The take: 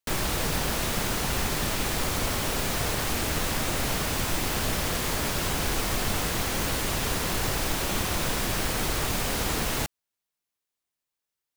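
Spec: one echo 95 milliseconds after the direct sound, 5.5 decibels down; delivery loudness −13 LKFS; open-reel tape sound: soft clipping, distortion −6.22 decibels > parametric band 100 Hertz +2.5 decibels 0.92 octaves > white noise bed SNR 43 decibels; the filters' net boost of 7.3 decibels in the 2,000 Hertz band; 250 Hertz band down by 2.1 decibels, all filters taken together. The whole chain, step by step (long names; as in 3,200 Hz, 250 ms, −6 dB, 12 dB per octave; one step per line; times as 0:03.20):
parametric band 250 Hz −3.5 dB
parametric band 2,000 Hz +9 dB
single-tap delay 95 ms −5.5 dB
soft clipping −32.5 dBFS
parametric band 100 Hz +2.5 dB 0.92 octaves
white noise bed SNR 43 dB
level +19.5 dB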